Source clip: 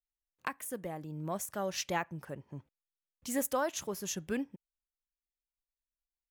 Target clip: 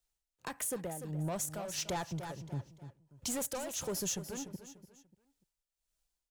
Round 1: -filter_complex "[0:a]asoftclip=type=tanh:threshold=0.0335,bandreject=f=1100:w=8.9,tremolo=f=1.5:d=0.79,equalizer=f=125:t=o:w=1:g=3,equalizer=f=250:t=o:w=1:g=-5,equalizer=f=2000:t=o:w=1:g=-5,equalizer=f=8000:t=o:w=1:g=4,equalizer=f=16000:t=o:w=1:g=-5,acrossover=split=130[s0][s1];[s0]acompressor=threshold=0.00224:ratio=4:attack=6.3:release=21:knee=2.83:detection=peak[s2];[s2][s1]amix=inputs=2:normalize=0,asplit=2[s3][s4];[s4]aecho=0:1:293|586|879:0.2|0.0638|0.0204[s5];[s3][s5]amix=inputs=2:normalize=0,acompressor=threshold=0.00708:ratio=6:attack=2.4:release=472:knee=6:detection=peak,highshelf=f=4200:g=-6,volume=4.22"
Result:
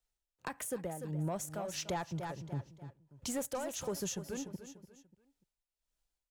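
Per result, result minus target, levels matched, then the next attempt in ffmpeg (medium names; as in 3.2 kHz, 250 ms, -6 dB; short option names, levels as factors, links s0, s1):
saturation: distortion -6 dB; 8 kHz band -3.0 dB
-filter_complex "[0:a]asoftclip=type=tanh:threshold=0.0158,bandreject=f=1100:w=8.9,tremolo=f=1.5:d=0.79,equalizer=f=125:t=o:w=1:g=3,equalizer=f=250:t=o:w=1:g=-5,equalizer=f=2000:t=o:w=1:g=-5,equalizer=f=8000:t=o:w=1:g=4,equalizer=f=16000:t=o:w=1:g=-5,acrossover=split=130[s0][s1];[s0]acompressor=threshold=0.00224:ratio=4:attack=6.3:release=21:knee=2.83:detection=peak[s2];[s2][s1]amix=inputs=2:normalize=0,asplit=2[s3][s4];[s4]aecho=0:1:293|586|879:0.2|0.0638|0.0204[s5];[s3][s5]amix=inputs=2:normalize=0,acompressor=threshold=0.00708:ratio=6:attack=2.4:release=472:knee=6:detection=peak,highshelf=f=4200:g=-6,volume=4.22"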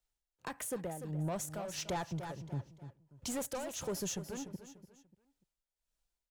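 8 kHz band -2.5 dB
-filter_complex "[0:a]asoftclip=type=tanh:threshold=0.0158,bandreject=f=1100:w=8.9,tremolo=f=1.5:d=0.79,equalizer=f=125:t=o:w=1:g=3,equalizer=f=250:t=o:w=1:g=-5,equalizer=f=2000:t=o:w=1:g=-5,equalizer=f=8000:t=o:w=1:g=4,equalizer=f=16000:t=o:w=1:g=-5,acrossover=split=130[s0][s1];[s0]acompressor=threshold=0.00224:ratio=4:attack=6.3:release=21:knee=2.83:detection=peak[s2];[s2][s1]amix=inputs=2:normalize=0,asplit=2[s3][s4];[s4]aecho=0:1:293|586|879:0.2|0.0638|0.0204[s5];[s3][s5]amix=inputs=2:normalize=0,acompressor=threshold=0.00708:ratio=6:attack=2.4:release=472:knee=6:detection=peak,volume=4.22"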